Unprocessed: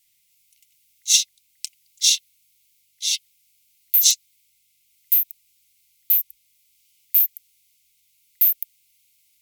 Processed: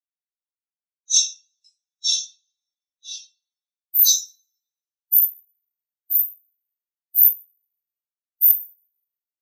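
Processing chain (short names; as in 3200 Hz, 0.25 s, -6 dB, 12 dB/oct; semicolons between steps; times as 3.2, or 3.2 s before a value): frequency shift -87 Hz; two-slope reverb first 0.65 s, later 2.9 s, from -21 dB, DRR -9 dB; spectral expander 2.5:1; gain -8.5 dB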